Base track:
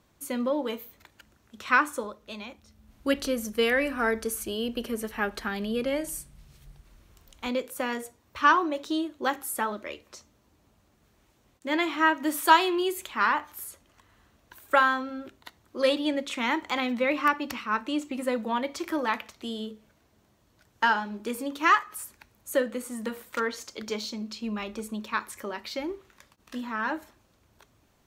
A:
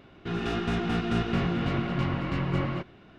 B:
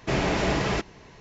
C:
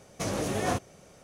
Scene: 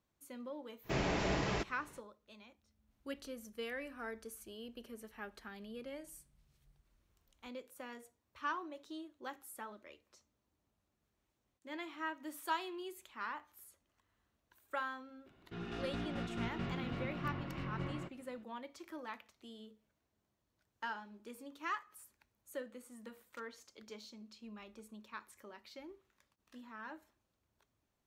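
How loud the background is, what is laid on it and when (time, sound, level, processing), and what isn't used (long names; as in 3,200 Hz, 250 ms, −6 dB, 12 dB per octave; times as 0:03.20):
base track −18.5 dB
0:00.82: mix in B −10 dB, fades 0.05 s
0:15.26: mix in A −13.5 dB
not used: C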